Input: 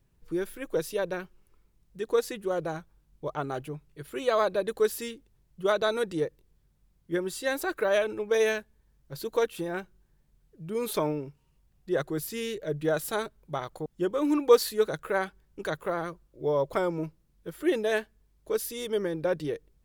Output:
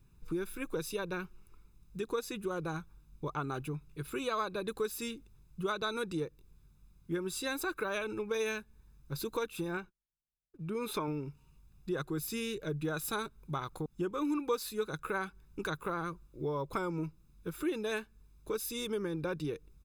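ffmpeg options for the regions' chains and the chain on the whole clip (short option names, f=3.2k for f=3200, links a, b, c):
-filter_complex "[0:a]asettb=1/sr,asplit=3[a][b][c];[a]atrim=end=9.774[d];[b]atrim=start=9.77:end=11.08,asetpts=PTS-STARTPTS,afade=t=in:d=0.004:c=qsin,afade=t=out:st=1.306:d=0.004:c=qsin,bass=f=250:g=-5,treble=f=4k:g=-8,agate=range=-35dB:threshold=-60dB:ratio=16:release=100:detection=peak[e];[c]atrim=start=11.076[f];[d][e]acrossfade=d=0.004:c1=hsin:c2=qsin[g];[g][f]acrossfade=d=0.004:c1=qsin:c2=hsin,aecho=1:1:0.8:0.64,acompressor=threshold=-37dB:ratio=2.5,volume=1.5dB"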